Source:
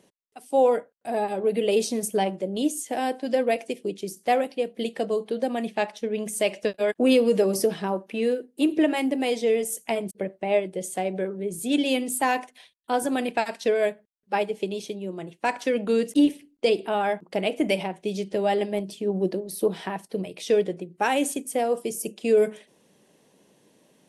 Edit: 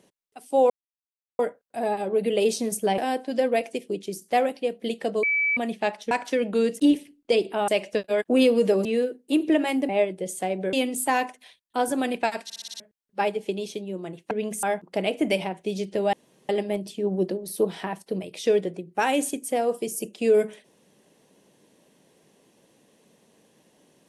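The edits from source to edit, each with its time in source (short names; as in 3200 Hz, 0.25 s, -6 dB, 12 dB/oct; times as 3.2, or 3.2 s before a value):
0.7 insert silence 0.69 s
2.29–2.93 cut
5.18–5.52 bleep 2300 Hz -20 dBFS
6.06–6.38 swap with 15.45–17.02
7.55–8.14 cut
9.18–10.44 cut
11.28–11.87 cut
13.58 stutter in place 0.06 s, 6 plays
18.52 insert room tone 0.36 s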